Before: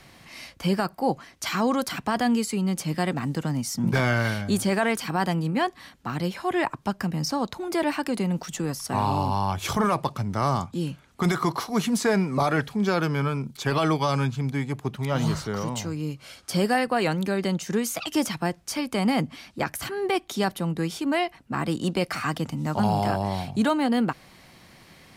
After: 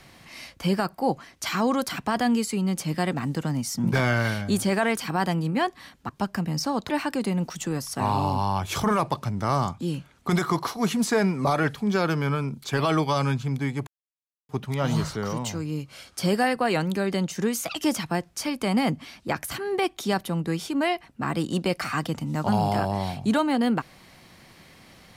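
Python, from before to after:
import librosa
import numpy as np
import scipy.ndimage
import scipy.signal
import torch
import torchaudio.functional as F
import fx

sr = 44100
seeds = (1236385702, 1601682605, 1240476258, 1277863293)

y = fx.edit(x, sr, fx.cut(start_s=6.09, length_s=0.66),
    fx.cut(start_s=7.55, length_s=0.27),
    fx.insert_silence(at_s=14.8, length_s=0.62), tone=tone)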